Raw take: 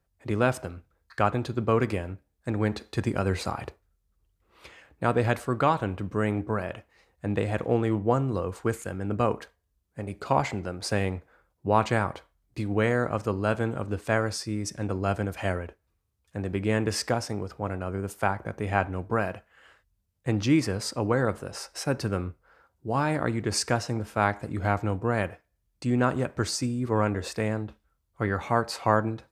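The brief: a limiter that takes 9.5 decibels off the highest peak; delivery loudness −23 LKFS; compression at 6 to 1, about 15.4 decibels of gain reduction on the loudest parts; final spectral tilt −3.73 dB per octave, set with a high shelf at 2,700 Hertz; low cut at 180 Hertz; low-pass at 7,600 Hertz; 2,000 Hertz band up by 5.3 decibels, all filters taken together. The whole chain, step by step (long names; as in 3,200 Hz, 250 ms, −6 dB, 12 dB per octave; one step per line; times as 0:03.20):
high-pass filter 180 Hz
low-pass filter 7,600 Hz
parametric band 2,000 Hz +3.5 dB
high-shelf EQ 2,700 Hz +9 dB
downward compressor 6 to 1, threshold −33 dBFS
level +16.5 dB
brickwall limiter −9 dBFS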